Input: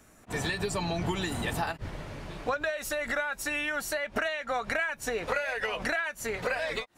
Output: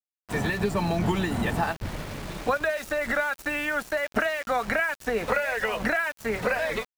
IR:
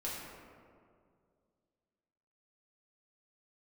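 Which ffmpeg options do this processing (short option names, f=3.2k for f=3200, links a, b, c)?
-filter_complex "[0:a]adynamicequalizer=threshold=0.00178:dfrequency=210:dqfactor=5.8:tfrequency=210:tqfactor=5.8:attack=5:release=100:ratio=0.375:range=4:mode=boostabove:tftype=bell,acrossover=split=400|450|2600[a][b][c][d];[d]acompressor=threshold=-49dB:ratio=10[e];[a][b][c][e]amix=inputs=4:normalize=0,aeval=exprs='val(0)*gte(abs(val(0)),0.00841)':c=same,volume=5dB"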